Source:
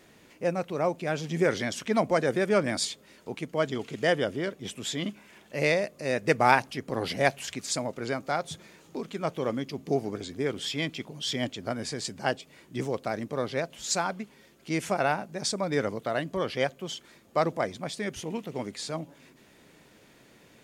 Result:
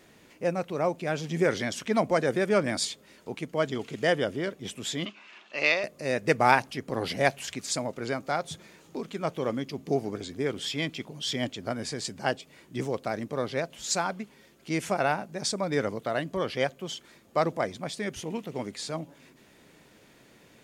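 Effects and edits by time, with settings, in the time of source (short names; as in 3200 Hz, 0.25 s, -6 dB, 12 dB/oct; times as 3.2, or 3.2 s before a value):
5.05–5.84 speaker cabinet 380–6200 Hz, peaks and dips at 480 Hz -8 dB, 1200 Hz +8 dB, 2700 Hz +9 dB, 4100 Hz +5 dB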